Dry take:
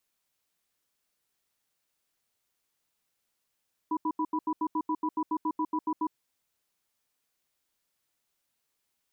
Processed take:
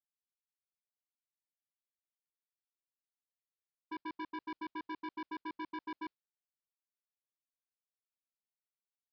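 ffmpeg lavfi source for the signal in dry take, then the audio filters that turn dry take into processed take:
-f lavfi -i "aevalsrc='0.0376*(sin(2*PI*311*t)+sin(2*PI*985*t))*clip(min(mod(t,0.14),0.06-mod(t,0.14))/0.005,0,1)':d=2.19:s=44100"
-af "agate=range=0.0224:threshold=0.0398:ratio=3:detection=peak,acompressor=threshold=0.02:ratio=2,aresample=11025,asoftclip=type=hard:threshold=0.0126,aresample=44100"

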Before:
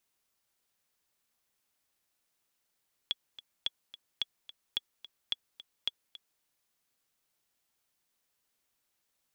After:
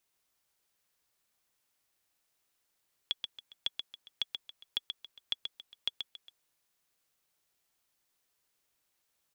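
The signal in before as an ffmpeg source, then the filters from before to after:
-f lavfi -i "aevalsrc='pow(10,(-17-16.5*gte(mod(t,2*60/217),60/217))/20)*sin(2*PI*3370*mod(t,60/217))*exp(-6.91*mod(t,60/217)/0.03)':d=3.31:s=44100"
-filter_complex "[0:a]equalizer=f=230:t=o:w=0.3:g=-4.5,asplit=2[s0][s1];[s1]aecho=0:1:131:0.501[s2];[s0][s2]amix=inputs=2:normalize=0"

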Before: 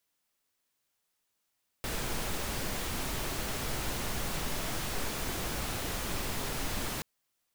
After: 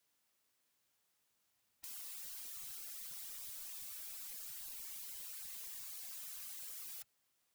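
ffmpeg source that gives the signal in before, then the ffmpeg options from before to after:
-f lavfi -i "anoisesrc=c=pink:a=0.102:d=5.18:r=44100:seed=1"
-filter_complex "[0:a]highpass=61,afftfilt=real='re*lt(hypot(re,im),0.00708)':imag='im*lt(hypot(re,im),0.00708)':win_size=1024:overlap=0.75,acrossover=split=150|590|6700[s0][s1][s2][s3];[s0]dynaudnorm=f=400:g=9:m=3.35[s4];[s4][s1][s2][s3]amix=inputs=4:normalize=0"

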